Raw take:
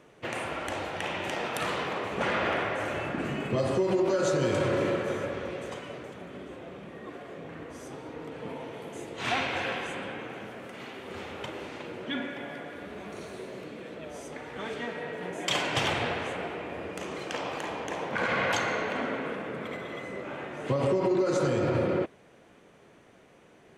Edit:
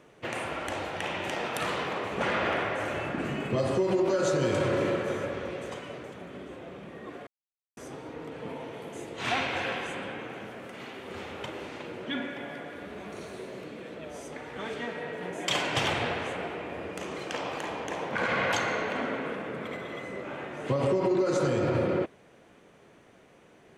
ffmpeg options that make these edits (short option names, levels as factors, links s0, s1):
-filter_complex "[0:a]asplit=3[s0][s1][s2];[s0]atrim=end=7.27,asetpts=PTS-STARTPTS,afade=t=out:st=7.266:d=0.004:c=hsin[s3];[s1]atrim=start=7.27:end=7.77,asetpts=PTS-STARTPTS,volume=0[s4];[s2]atrim=start=7.77,asetpts=PTS-STARTPTS,afade=t=in:d=0.004:c=hsin[s5];[s3][s4][s5]concat=n=3:v=0:a=1"